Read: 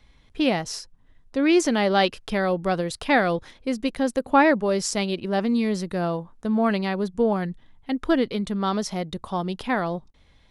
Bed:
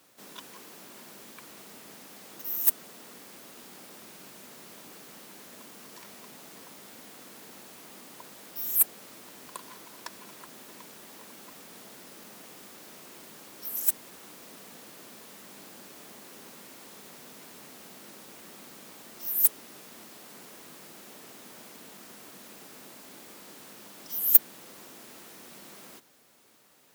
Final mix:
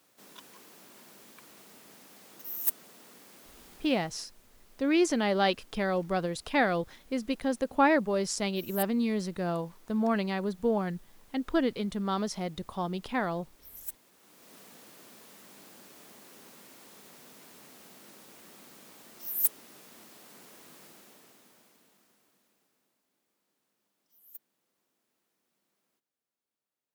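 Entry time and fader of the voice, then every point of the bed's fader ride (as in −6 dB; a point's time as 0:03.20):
3.45 s, −6.0 dB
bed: 0:03.72 −5.5 dB
0:04.29 −14.5 dB
0:14.14 −14.5 dB
0:14.56 −4.5 dB
0:20.85 −4.5 dB
0:23.08 −31.5 dB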